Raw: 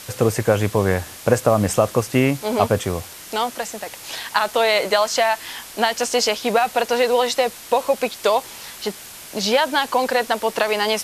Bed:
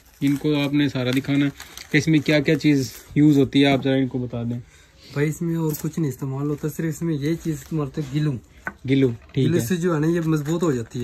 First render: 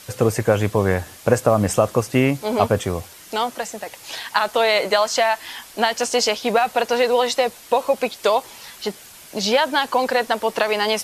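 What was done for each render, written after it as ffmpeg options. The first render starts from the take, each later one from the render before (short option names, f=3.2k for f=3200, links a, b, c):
-af "afftdn=nr=6:nf=-39"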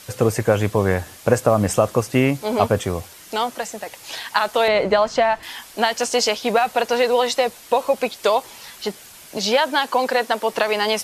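-filter_complex "[0:a]asettb=1/sr,asplit=3[a][b][c];[a]atrim=end=4.684[d];[b]atrim=start=4.68:end=5.43,asetpts=PTS-STARTPTS,afade=t=in:d=0.004:c=qsin,afade=t=out:st=0.746:d=0.004:c=qsin,aemphasis=mode=reproduction:type=riaa[e];[c]atrim=start=5.426[f];[d][e]acrossfade=d=0.004:c1=hsin:c2=qsin[g];[g][f]acrossfade=d=0.004:c1=qsin:c2=hsin,asettb=1/sr,asplit=3[h][i][j];[h]atrim=end=9.374[k];[i]atrim=start=9.37:end=10.52,asetpts=PTS-STARTPTS,afade=t=in:d=0.004:c=qsin,afade=t=out:st=1.146:d=0.004:c=qsin,highpass=180[l];[j]atrim=start=10.516[m];[k][l]acrossfade=d=0.004:c1=hsin:c2=qsin[n];[n][m]acrossfade=d=0.004:c1=qsin:c2=hsin"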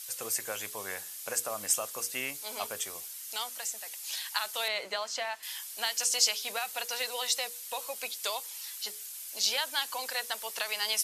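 -af "aderivative,bandreject=f=60:t=h:w=6,bandreject=f=120:t=h:w=6,bandreject=f=180:t=h:w=6,bandreject=f=240:t=h:w=6,bandreject=f=300:t=h:w=6,bandreject=f=360:t=h:w=6,bandreject=f=420:t=h:w=6,bandreject=f=480:t=h:w=6"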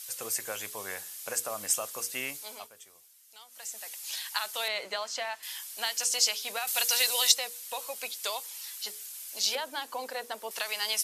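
-filter_complex "[0:a]asettb=1/sr,asplit=3[a][b][c];[a]atrim=end=6.674[d];[b]atrim=start=6.67:end=7.32,asetpts=PTS-STARTPTS,afade=t=in:d=0.004:c=qsin,afade=t=out:st=0.646:d=0.004:c=qsin,highshelf=f=2.4k:g=12[e];[c]atrim=start=7.316[f];[d][e]acrossfade=d=0.004:c1=hsin:c2=qsin[g];[g][f]acrossfade=d=0.004:c1=qsin:c2=hsin,asettb=1/sr,asplit=3[h][i][j];[h]atrim=end=9.554[k];[i]atrim=start=9.55:end=10.51,asetpts=PTS-STARTPTS,afade=t=in:d=0.004:c=qsin,afade=t=out:st=0.956:d=0.004:c=qsin,tiltshelf=f=970:g=9[l];[j]atrim=start=10.506[m];[k][l]acrossfade=d=0.004:c1=hsin:c2=qsin[n];[n][m]acrossfade=d=0.004:c1=qsin:c2=hsin,asplit=3[o][p][q];[o]atrim=end=2.7,asetpts=PTS-STARTPTS,afade=t=out:st=2.35:d=0.35:silence=0.149624[r];[p]atrim=start=2.7:end=3.48,asetpts=PTS-STARTPTS,volume=-16.5dB[s];[q]atrim=start=3.48,asetpts=PTS-STARTPTS,afade=t=in:d=0.35:silence=0.149624[t];[r][s][t]concat=n=3:v=0:a=1"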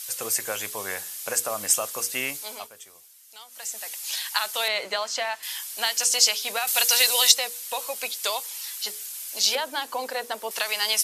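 -af "volume=6.5dB,alimiter=limit=-2dB:level=0:latency=1"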